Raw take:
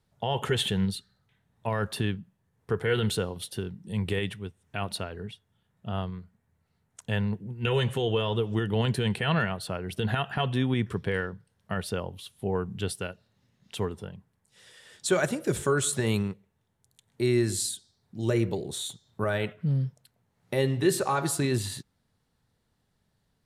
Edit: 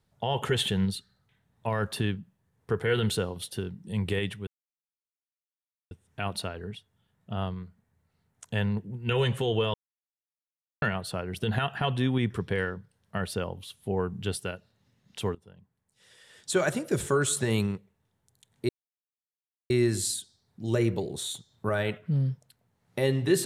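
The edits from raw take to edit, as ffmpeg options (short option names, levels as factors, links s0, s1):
-filter_complex "[0:a]asplit=6[s0][s1][s2][s3][s4][s5];[s0]atrim=end=4.47,asetpts=PTS-STARTPTS,afade=t=out:st=4.466:d=0.004:c=hsin,apad=pad_dur=1.44[s6];[s1]atrim=start=4.47:end=8.3,asetpts=PTS-STARTPTS,afade=t=in:d=0.004:c=hsin,afade=t=out:st=3.826:d=0.004:c=hsin[s7];[s2]atrim=start=8.3:end=9.38,asetpts=PTS-STARTPTS,volume=0[s8];[s3]atrim=start=9.38:end=13.91,asetpts=PTS-STARTPTS,afade=t=in:d=0.004:c=hsin,afade=t=out:st=4.526:d=0.004:c=hsin:silence=0.1[s9];[s4]atrim=start=13.91:end=17.25,asetpts=PTS-STARTPTS,afade=t=in:d=1.82:c=qsin:silence=0.1,afade=t=out:st=3.336:d=0.004:c=hsin,apad=pad_dur=1.01[s10];[s5]atrim=start=17.25,asetpts=PTS-STARTPTS,afade=t=in:d=0.004:c=hsin[s11];[s6][s7][s8][s9][s10][s11]concat=n=6:v=0:a=1"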